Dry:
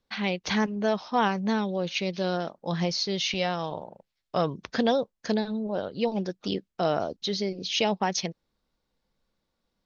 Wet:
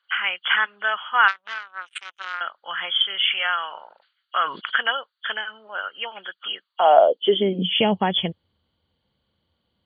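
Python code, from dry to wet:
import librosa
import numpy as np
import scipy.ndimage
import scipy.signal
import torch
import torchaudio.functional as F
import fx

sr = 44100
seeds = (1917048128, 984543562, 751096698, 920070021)

y = fx.freq_compress(x, sr, knee_hz=2800.0, ratio=4.0)
y = fx.power_curve(y, sr, exponent=3.0, at=(1.28, 2.41))
y = fx.filter_sweep_highpass(y, sr, from_hz=1400.0, to_hz=84.0, start_s=6.59, end_s=8.05, q=5.0)
y = fx.sustainer(y, sr, db_per_s=130.0, at=(3.54, 4.75))
y = y * librosa.db_to_amplitude(4.5)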